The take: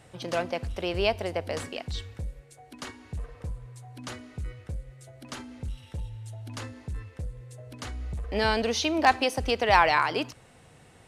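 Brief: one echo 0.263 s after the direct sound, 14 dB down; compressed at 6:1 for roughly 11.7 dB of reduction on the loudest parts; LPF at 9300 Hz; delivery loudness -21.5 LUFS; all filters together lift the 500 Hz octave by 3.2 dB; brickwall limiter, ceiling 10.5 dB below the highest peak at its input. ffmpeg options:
-af "lowpass=9.3k,equalizer=f=500:t=o:g=4,acompressor=threshold=-26dB:ratio=6,alimiter=limit=-24dB:level=0:latency=1,aecho=1:1:263:0.2,volume=15.5dB"

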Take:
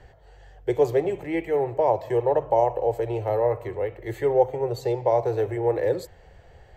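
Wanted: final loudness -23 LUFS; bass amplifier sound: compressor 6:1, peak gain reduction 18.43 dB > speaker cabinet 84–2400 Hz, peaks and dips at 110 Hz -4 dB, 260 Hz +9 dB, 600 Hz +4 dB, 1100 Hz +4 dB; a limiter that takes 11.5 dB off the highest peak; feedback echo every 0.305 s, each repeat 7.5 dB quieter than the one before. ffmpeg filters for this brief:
-af "alimiter=limit=-18.5dB:level=0:latency=1,aecho=1:1:305|610|915|1220|1525:0.422|0.177|0.0744|0.0312|0.0131,acompressor=threshold=-41dB:ratio=6,highpass=f=84:w=0.5412,highpass=f=84:w=1.3066,equalizer=f=110:t=q:w=4:g=-4,equalizer=f=260:t=q:w=4:g=9,equalizer=f=600:t=q:w=4:g=4,equalizer=f=1.1k:t=q:w=4:g=4,lowpass=f=2.4k:w=0.5412,lowpass=f=2.4k:w=1.3066,volume=19dB"

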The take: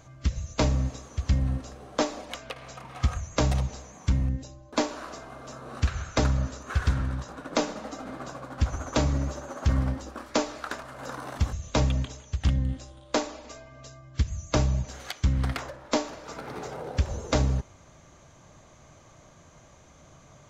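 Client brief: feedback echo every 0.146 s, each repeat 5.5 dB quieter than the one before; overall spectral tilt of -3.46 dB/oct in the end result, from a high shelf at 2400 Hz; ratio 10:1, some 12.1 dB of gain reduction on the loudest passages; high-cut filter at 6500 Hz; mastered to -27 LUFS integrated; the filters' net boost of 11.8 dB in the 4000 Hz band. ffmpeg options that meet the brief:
-af "lowpass=6.5k,highshelf=f=2.4k:g=7.5,equalizer=f=4k:t=o:g=8.5,acompressor=threshold=-30dB:ratio=10,aecho=1:1:146|292|438|584|730|876|1022:0.531|0.281|0.149|0.079|0.0419|0.0222|0.0118,volume=7.5dB"

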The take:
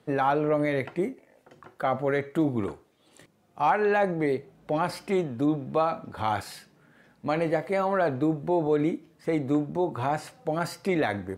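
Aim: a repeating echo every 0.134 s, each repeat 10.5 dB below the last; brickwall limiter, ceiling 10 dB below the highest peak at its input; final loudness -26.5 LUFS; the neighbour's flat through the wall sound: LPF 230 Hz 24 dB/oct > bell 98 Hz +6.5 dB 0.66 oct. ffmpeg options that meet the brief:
-af "alimiter=limit=-21.5dB:level=0:latency=1,lowpass=f=230:w=0.5412,lowpass=f=230:w=1.3066,equalizer=f=98:t=o:w=0.66:g=6.5,aecho=1:1:134|268|402:0.299|0.0896|0.0269,volume=12dB"

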